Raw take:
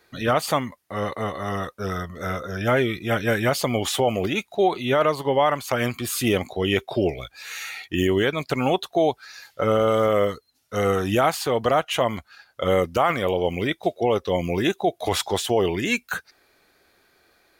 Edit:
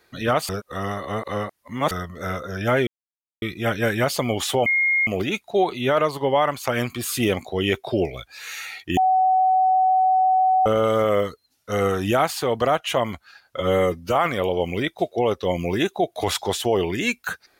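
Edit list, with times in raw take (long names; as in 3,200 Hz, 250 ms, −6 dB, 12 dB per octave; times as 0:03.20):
0:00.49–0:01.91: reverse
0:02.87: splice in silence 0.55 s
0:04.11: insert tone 2,140 Hz −16.5 dBFS 0.41 s
0:08.01–0:09.70: beep over 751 Hz −14.5 dBFS
0:12.61–0:13.00: time-stretch 1.5×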